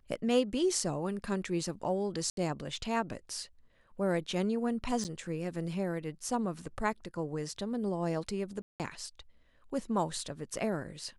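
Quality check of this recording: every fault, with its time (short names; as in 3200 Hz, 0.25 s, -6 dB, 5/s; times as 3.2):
2.3–2.37 gap 72 ms
5.04–5.05 gap 7.8 ms
8.62–8.8 gap 0.178 s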